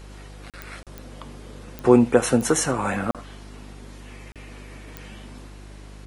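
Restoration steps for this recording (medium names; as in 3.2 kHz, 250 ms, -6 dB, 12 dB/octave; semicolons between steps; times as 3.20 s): de-click; de-hum 50.2 Hz, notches 8; interpolate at 0.50/0.83/3.11/4.32 s, 37 ms; inverse comb 76 ms -21.5 dB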